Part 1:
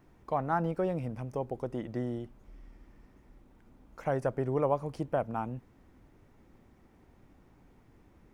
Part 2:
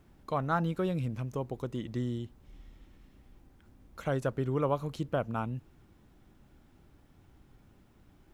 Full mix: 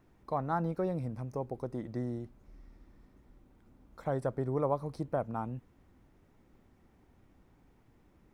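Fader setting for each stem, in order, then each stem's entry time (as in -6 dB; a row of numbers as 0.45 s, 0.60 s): -4.5 dB, -12.0 dB; 0.00 s, 0.00 s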